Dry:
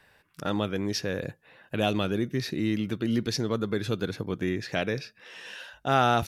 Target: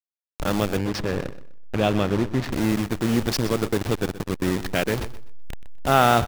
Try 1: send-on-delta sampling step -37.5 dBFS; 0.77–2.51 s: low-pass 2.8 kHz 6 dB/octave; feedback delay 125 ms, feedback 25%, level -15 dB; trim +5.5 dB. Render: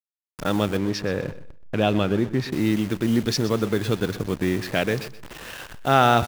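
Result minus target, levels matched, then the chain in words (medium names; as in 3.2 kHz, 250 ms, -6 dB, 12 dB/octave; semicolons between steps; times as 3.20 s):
send-on-delta sampling: distortion -10 dB
send-on-delta sampling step -27.5 dBFS; 0.77–2.51 s: low-pass 2.8 kHz 6 dB/octave; feedback delay 125 ms, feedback 25%, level -15 dB; trim +5.5 dB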